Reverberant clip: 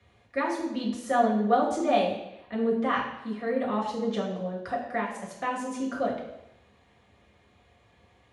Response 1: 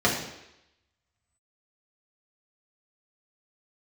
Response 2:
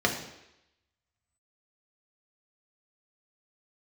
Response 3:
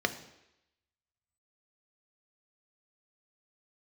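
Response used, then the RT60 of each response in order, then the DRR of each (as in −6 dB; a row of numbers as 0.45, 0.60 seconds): 1; 0.85, 0.85, 0.85 seconds; −5.0, 0.5, 7.5 decibels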